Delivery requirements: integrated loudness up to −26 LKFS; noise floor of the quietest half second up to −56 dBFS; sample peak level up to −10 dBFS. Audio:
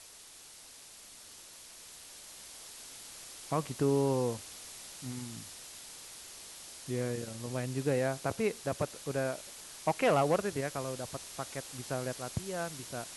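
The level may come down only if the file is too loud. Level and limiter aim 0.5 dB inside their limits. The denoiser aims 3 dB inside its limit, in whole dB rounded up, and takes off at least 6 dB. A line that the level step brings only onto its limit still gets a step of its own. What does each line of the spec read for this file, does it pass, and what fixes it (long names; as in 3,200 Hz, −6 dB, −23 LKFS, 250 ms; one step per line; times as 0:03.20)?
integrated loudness −35.0 LKFS: in spec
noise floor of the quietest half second −53 dBFS: out of spec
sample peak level −17.0 dBFS: in spec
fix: broadband denoise 6 dB, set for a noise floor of −53 dBFS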